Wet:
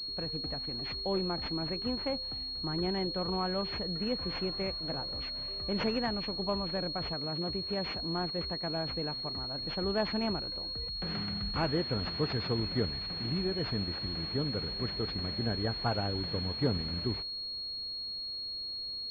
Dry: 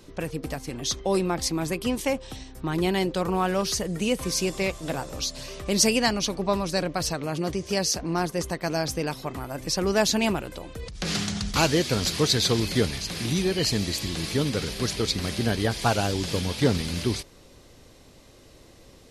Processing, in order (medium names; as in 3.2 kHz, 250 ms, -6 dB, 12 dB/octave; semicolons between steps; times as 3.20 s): bass shelf 150 Hz +3 dB; class-D stage that switches slowly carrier 4.3 kHz; trim -9 dB